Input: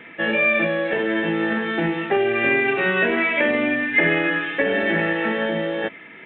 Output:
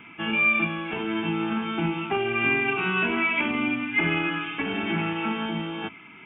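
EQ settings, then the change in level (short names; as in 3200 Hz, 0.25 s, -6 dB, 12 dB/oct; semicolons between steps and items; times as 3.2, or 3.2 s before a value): bell 91 Hz +6.5 dB 0.39 oct; fixed phaser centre 2700 Hz, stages 8; 0.0 dB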